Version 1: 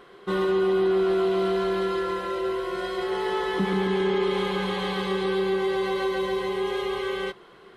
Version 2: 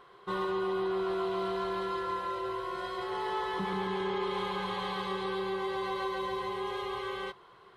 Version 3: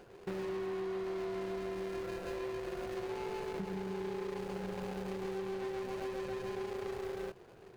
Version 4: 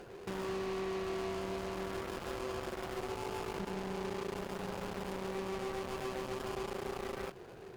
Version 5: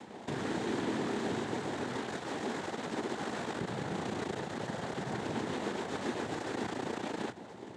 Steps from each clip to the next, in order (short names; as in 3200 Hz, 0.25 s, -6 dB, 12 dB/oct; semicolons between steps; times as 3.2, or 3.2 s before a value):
fifteen-band EQ 100 Hz +9 dB, 250 Hz -7 dB, 1000 Hz +9 dB, 4000 Hz +3 dB; gain -9 dB
median filter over 41 samples; compressor 6:1, threshold -44 dBFS, peak gain reduction 12 dB; gain +7 dB
added harmonics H 5 -11 dB, 7 -6 dB, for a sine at -28.5 dBFS; limiter -37 dBFS, peak gain reduction 10 dB; gain +5.5 dB
noise vocoder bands 6; gain +3.5 dB